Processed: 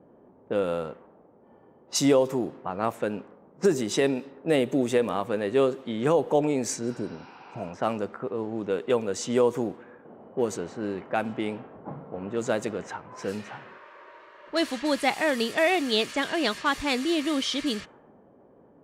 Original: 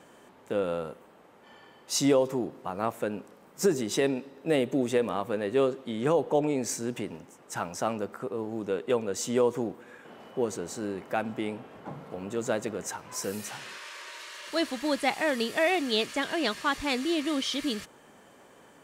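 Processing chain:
low-pass that shuts in the quiet parts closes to 490 Hz, open at −25.5 dBFS
healed spectral selection 0:06.86–0:07.64, 720–5,900 Hz both
level +2.5 dB

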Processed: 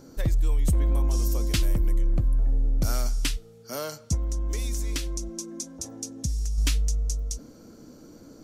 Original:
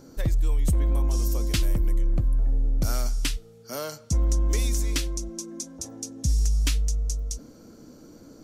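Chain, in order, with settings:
0:04.14–0:06.58: downward compressor 5 to 1, threshold −25 dBFS, peak gain reduction 6.5 dB

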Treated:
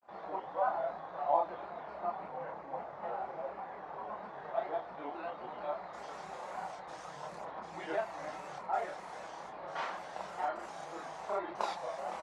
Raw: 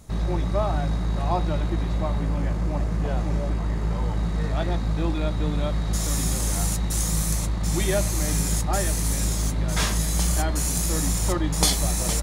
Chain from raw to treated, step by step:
comb filter 5.7 ms, depth 33%
granular cloud, spray 34 ms, pitch spread up and down by 3 semitones
four-pole ladder band-pass 890 Hz, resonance 40%
multi-voice chorus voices 4, 1.5 Hz, delay 30 ms, depth 3 ms
level +8.5 dB

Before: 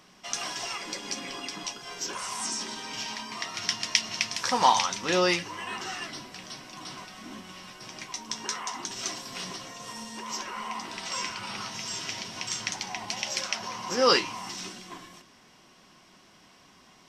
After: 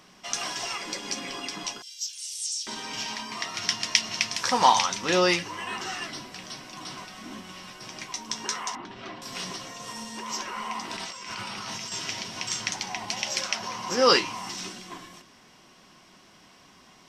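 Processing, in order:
0:01.82–0:02.67: inverse Chebyshev high-pass filter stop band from 610 Hz, stop band 80 dB
0:08.75–0:09.22: high-frequency loss of the air 420 metres
0:10.90–0:11.92: compressor whose output falls as the input rises −39 dBFS, ratio −1
level +2 dB

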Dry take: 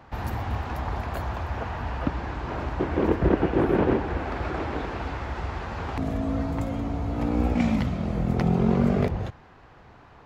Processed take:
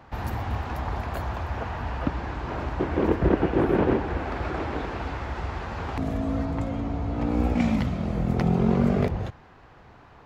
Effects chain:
0:06.45–0:07.29: high-frequency loss of the air 51 metres

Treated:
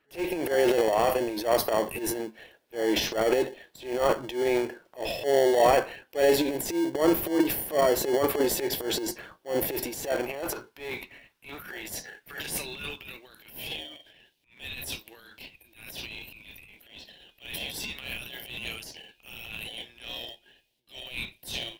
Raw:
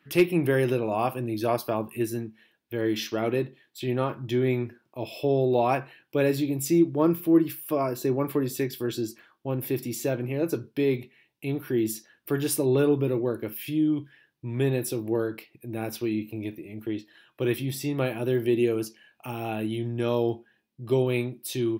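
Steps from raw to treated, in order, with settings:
high-pass filter sweep 520 Hz → 3,000 Hz, 0:09.56–0:13.25
automatic gain control gain up to 6 dB
in parallel at −7 dB: decimation without filtering 35×
on the sum: transient designer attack −12 dB, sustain +10 dB
level −7 dB

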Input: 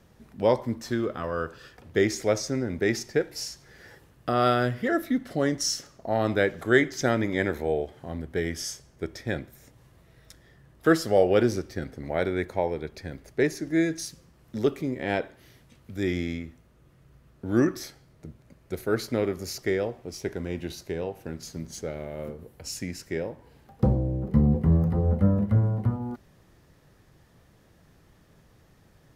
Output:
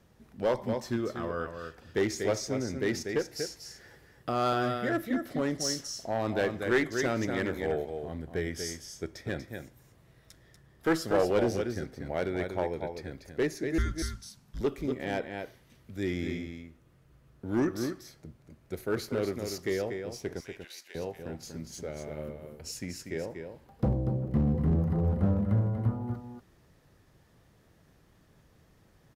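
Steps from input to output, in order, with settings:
0:13.78–0:14.61: frequency shifter −270 Hz
0:20.40–0:20.95: high-pass filter 1,400 Hz 12 dB per octave
single-tap delay 240 ms −7 dB
asymmetric clip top −18 dBFS
level −4.5 dB

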